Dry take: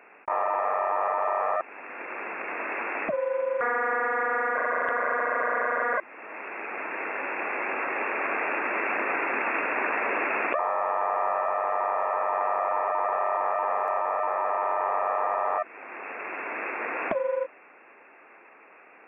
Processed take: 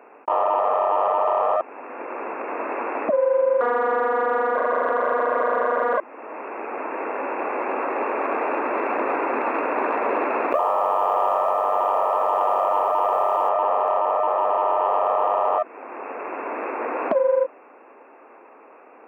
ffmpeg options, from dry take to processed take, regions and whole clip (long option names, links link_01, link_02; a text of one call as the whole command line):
ffmpeg -i in.wav -filter_complex "[0:a]asettb=1/sr,asplit=3[link_01][link_02][link_03];[link_01]atrim=end=10.514[link_04];[link_02]atrim=start=10.51:end=13.49,asetpts=PTS-STARTPTS,afade=type=in:duration=0.004:curve=qsin,afade=type=out:start_time=2.976:duration=0.004:curve=qsin,acrusher=bits=8:mode=log:mix=0:aa=0.000001,asplit=2[link_05][link_06];[link_06]adelay=30,volume=-13.5dB[link_07];[link_05][link_07]amix=inputs=2:normalize=0,atrim=end_sample=131418[link_08];[link_03]atrim=start=13.486[link_09];[link_04][link_08]acrossfade=duration=0.004:curve1=hsin:curve2=qsin[link_10];[link_10][link_09]acrossfade=duration=0.004:curve1=qsin:curve2=hsin,equalizer=frequency=125:width_type=o:width=1:gain=-9,equalizer=frequency=250:width_type=o:width=1:gain=11,equalizer=frequency=500:width_type=o:width=1:gain=7,equalizer=frequency=1000:width_type=o:width=1:gain=7,equalizer=frequency=2000:width_type=o:width=1:gain=-7,acontrast=48,lowshelf=frequency=110:gain=-10.5,volume=-6dB" out.wav